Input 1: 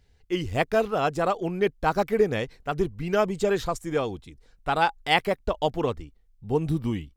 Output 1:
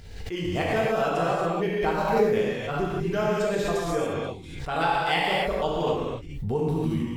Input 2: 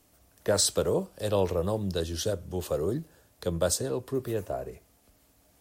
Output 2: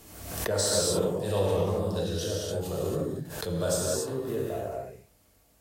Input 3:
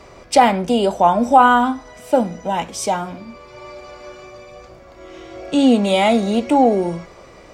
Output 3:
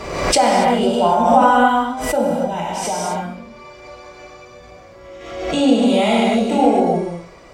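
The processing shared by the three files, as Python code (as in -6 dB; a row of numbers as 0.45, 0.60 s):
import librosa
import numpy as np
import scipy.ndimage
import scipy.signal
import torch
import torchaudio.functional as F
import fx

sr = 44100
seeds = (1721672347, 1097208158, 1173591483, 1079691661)

y = fx.rev_gated(x, sr, seeds[0], gate_ms=310, shape='flat', drr_db=-6.0)
y = fx.pre_swell(y, sr, db_per_s=52.0)
y = y * 10.0 ** (-7.0 / 20.0)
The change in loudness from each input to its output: 0.0, +0.5, 0.0 LU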